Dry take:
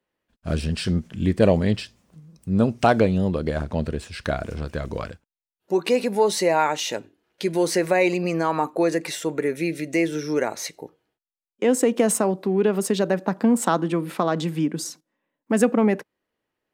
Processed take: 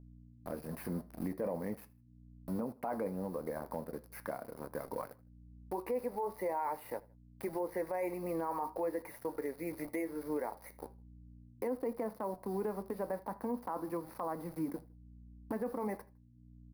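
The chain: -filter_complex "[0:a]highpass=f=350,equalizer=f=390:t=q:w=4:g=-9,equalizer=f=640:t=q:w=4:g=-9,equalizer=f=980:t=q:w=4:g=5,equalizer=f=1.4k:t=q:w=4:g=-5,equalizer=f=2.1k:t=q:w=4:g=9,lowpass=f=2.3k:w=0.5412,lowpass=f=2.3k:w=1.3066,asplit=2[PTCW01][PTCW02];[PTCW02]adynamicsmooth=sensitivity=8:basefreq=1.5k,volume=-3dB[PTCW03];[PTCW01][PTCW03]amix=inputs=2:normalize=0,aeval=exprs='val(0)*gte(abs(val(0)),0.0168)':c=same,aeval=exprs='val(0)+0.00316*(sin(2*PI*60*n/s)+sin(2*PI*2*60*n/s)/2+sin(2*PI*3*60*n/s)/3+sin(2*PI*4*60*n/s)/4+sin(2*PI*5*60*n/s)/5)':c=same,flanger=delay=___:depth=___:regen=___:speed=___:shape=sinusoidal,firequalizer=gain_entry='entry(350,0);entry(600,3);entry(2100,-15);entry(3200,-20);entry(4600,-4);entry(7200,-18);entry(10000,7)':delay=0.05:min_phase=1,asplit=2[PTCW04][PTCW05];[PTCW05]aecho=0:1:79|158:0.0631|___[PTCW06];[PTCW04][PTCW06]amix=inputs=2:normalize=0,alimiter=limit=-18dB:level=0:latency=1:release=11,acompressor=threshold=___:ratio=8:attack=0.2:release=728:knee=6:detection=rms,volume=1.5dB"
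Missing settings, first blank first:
7.3, 4.9, -69, 0.42, 0.0177, -31dB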